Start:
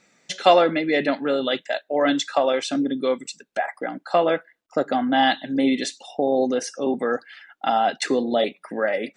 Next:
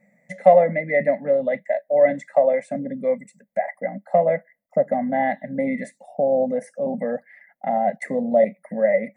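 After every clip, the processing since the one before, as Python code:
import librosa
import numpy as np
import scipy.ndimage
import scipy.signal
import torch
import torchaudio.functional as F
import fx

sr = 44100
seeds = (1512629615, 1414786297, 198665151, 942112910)

y = fx.curve_eq(x, sr, hz=(110.0, 200.0, 360.0, 570.0, 1400.0, 2000.0, 2900.0, 5500.0, 12000.0), db=(0, 12, -19, 10, -21, 6, -30, -24, 3))
y = y * 10.0 ** (-2.0 / 20.0)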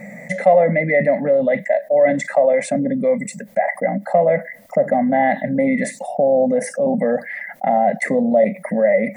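y = fx.env_flatten(x, sr, amount_pct=50)
y = y * 10.0 ** (-1.0 / 20.0)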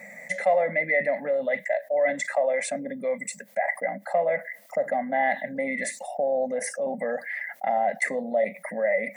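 y = fx.highpass(x, sr, hz=1300.0, slope=6)
y = y * 10.0 ** (-1.5 / 20.0)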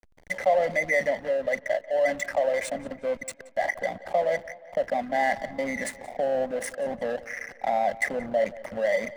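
y = fx.backlash(x, sr, play_db=-29.0)
y = fx.echo_tape(y, sr, ms=180, feedback_pct=59, wet_db=-17.0, lp_hz=4600.0, drive_db=15.0, wow_cents=29)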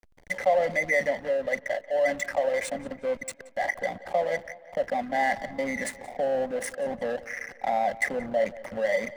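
y = fx.notch(x, sr, hz=640.0, q=12.0)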